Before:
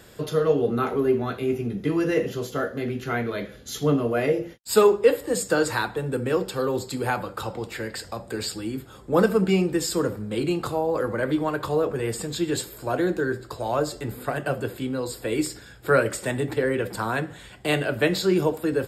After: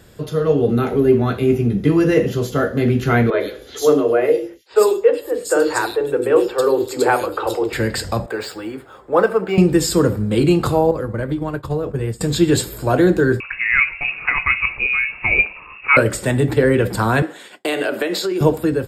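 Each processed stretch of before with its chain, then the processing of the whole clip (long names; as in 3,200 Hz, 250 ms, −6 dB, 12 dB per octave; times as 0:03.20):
0:00.69–0:01.12: parametric band 1,100 Hz −8.5 dB 0.52 octaves + one half of a high-frequency compander encoder only
0:03.30–0:07.73: low shelf with overshoot 260 Hz −13 dB, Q 3 + three-band delay without the direct sound mids, lows, highs 40/100 ms, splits 380/3,100 Hz
0:08.26–0:09.58: three-way crossover with the lows and the highs turned down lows −22 dB, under 420 Hz, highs −12 dB, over 2,300 Hz + linearly interpolated sample-rate reduction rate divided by 2×
0:10.91–0:12.21: downward expander −21 dBFS + low-shelf EQ 180 Hz +8.5 dB + downward compressor 16 to 1, threshold −29 dBFS
0:13.40–0:15.97: voice inversion scrambler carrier 2,700 Hz + one half of a high-frequency compander encoder only
0:17.22–0:18.41: high-pass filter 290 Hz 24 dB per octave + downward compressor 10 to 1, threshold −26 dBFS + downward expander −44 dBFS
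whole clip: low-shelf EQ 220 Hz +8.5 dB; automatic gain control gain up to 11.5 dB; level −1 dB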